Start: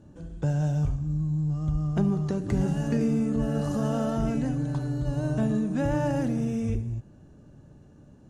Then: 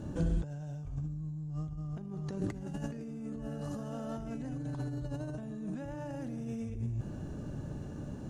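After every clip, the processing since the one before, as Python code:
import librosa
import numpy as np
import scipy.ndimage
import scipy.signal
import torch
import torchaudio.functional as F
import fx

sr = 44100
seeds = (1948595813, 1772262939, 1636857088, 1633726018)

y = fx.over_compress(x, sr, threshold_db=-38.0, ratio=-1.0)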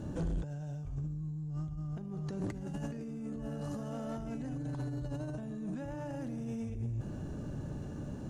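y = 10.0 ** (-30.5 / 20.0) * np.tanh(x / 10.0 ** (-30.5 / 20.0))
y = y * librosa.db_to_amplitude(1.0)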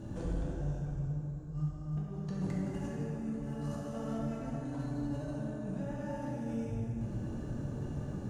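y = fx.rev_plate(x, sr, seeds[0], rt60_s=3.1, hf_ratio=0.55, predelay_ms=0, drr_db=-5.0)
y = y * librosa.db_to_amplitude(-4.5)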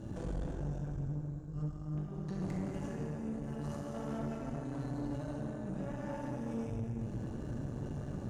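y = fx.tube_stage(x, sr, drive_db=34.0, bias=0.7)
y = y * librosa.db_to_amplitude(2.5)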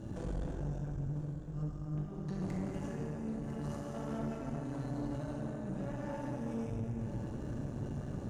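y = x + 10.0 ** (-12.5 / 20.0) * np.pad(x, (int(1000 * sr / 1000.0), 0))[:len(x)]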